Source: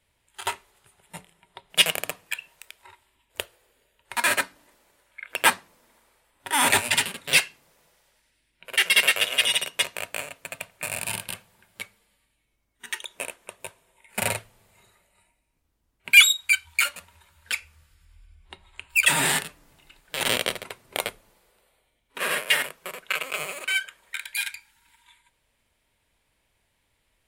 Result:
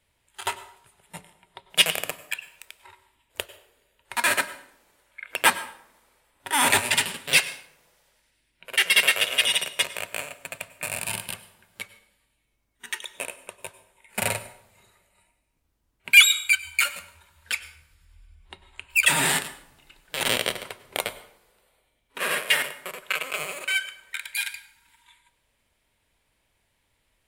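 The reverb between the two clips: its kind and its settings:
dense smooth reverb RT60 0.63 s, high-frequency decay 0.75×, pre-delay 85 ms, DRR 15 dB

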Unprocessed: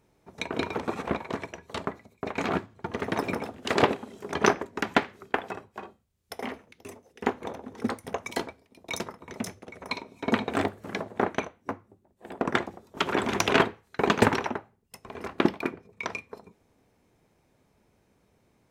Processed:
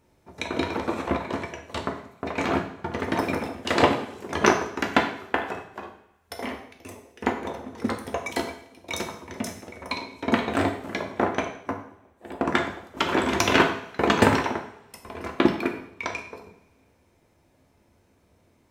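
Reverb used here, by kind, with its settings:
coupled-rooms reverb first 0.6 s, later 2.1 s, from −24 dB, DRR 2.5 dB
level +1.5 dB

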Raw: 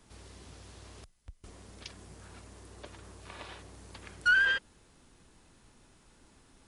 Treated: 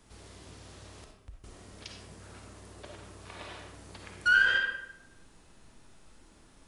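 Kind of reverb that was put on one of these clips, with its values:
comb and all-pass reverb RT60 0.88 s, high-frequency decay 0.65×, pre-delay 15 ms, DRR 1.5 dB

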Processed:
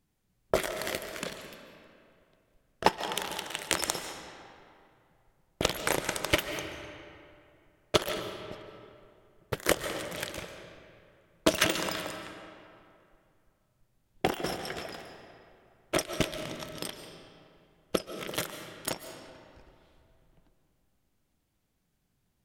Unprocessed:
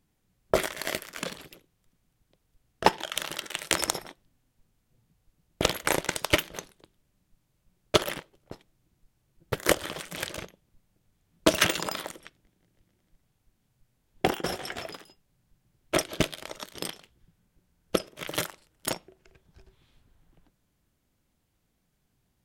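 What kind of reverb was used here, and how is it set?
comb and all-pass reverb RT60 2.5 s, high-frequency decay 0.65×, pre-delay 105 ms, DRR 7.5 dB
level −3 dB

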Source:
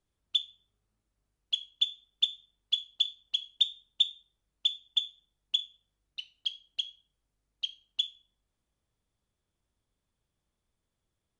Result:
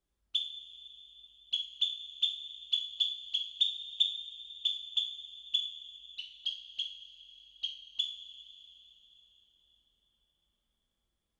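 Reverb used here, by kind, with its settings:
coupled-rooms reverb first 0.41 s, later 4.2 s, from −17 dB, DRR −0.5 dB
level −5 dB

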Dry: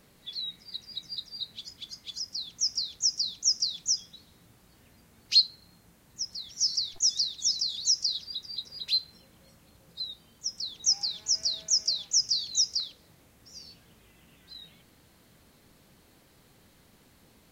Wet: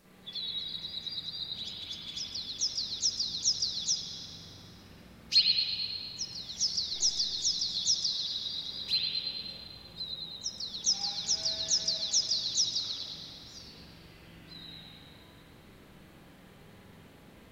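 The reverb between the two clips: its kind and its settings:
spring reverb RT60 2.2 s, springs 43/49/54 ms, chirp 65 ms, DRR −9 dB
level −3.5 dB

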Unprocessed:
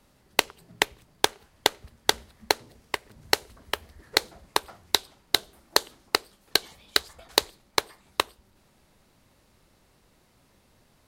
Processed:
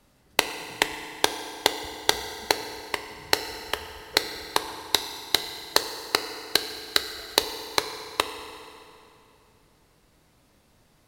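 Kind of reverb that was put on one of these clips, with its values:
feedback delay network reverb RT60 2.8 s, high-frequency decay 0.8×, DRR 7 dB

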